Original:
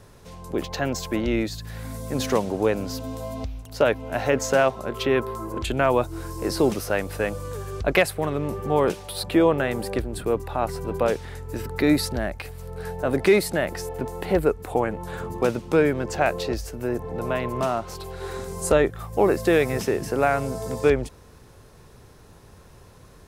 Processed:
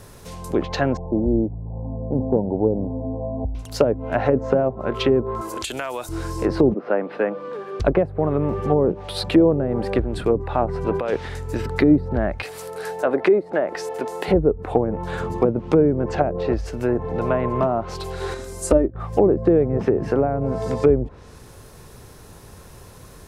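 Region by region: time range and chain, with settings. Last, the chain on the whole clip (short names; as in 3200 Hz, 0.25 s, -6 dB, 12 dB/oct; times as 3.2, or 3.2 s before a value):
0.97–3.55 steep low-pass 940 Hz 96 dB/oct + dynamic EQ 700 Hz, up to -4 dB, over -31 dBFS, Q 0.8
5.41–6.09 RIAA curve recording + compressor, threshold -30 dBFS
6.74–7.8 steep high-pass 200 Hz + air absorption 380 m
10.86–11.28 low shelf 140 Hz -8.5 dB + negative-ratio compressor -25 dBFS, ratio -0.5
12.43–14.28 HPF 350 Hz + upward compressor, threshold -32 dBFS
18.34–18.95 notch 860 Hz, Q 17 + comb 3.3 ms, depth 61% + upward expander, over -25 dBFS
whole clip: treble ducked by the level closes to 450 Hz, closed at -18 dBFS; high shelf 9500 Hz +10.5 dB; gain +5.5 dB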